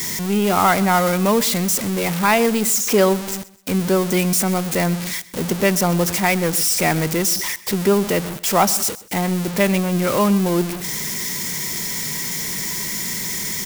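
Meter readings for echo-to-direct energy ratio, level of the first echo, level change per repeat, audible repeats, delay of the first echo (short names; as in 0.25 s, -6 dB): -19.0 dB, -19.5 dB, -9.5 dB, 2, 0.127 s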